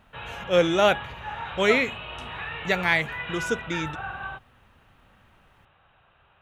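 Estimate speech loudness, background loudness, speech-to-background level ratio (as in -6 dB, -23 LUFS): -24.5 LUFS, -35.0 LUFS, 10.5 dB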